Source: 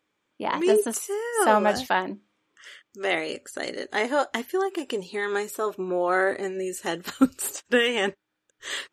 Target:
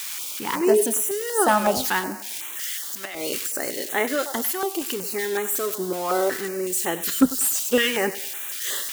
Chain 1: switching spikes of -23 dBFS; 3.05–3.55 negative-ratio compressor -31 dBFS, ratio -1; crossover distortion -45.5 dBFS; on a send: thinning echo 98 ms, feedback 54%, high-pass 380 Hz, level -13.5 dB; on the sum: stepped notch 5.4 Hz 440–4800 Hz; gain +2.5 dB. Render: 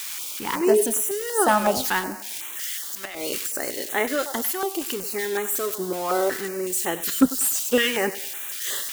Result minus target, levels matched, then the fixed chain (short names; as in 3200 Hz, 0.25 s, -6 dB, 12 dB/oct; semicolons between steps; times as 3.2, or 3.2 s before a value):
crossover distortion: distortion +11 dB
switching spikes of -23 dBFS; 3.05–3.55 negative-ratio compressor -31 dBFS, ratio -1; crossover distortion -57.5 dBFS; on a send: thinning echo 98 ms, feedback 54%, high-pass 380 Hz, level -13.5 dB; on the sum: stepped notch 5.4 Hz 440–4800 Hz; gain +2.5 dB